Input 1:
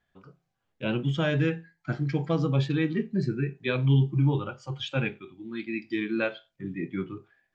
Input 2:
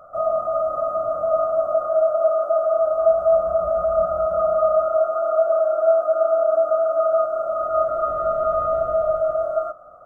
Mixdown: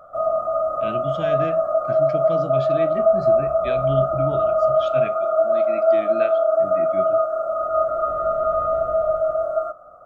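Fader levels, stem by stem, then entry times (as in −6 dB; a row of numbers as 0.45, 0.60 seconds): −4.0, 0.0 decibels; 0.00, 0.00 seconds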